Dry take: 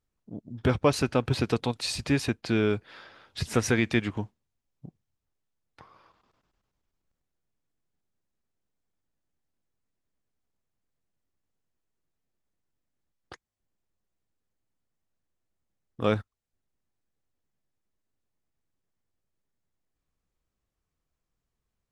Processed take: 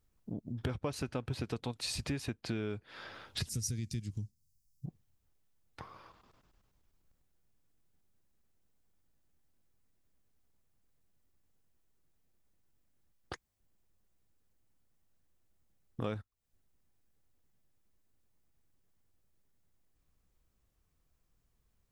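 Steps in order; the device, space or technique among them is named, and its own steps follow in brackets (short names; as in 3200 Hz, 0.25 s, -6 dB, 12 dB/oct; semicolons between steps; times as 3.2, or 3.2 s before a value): 3.49–4.86 EQ curve 140 Hz 0 dB, 970 Hz -30 dB, 3400 Hz -12 dB, 5000 Hz +5 dB; ASMR close-microphone chain (low shelf 150 Hz +6 dB; compressor 4:1, threshold -40 dBFS, peak gain reduction 20 dB; high shelf 10000 Hz +7 dB); gain +3 dB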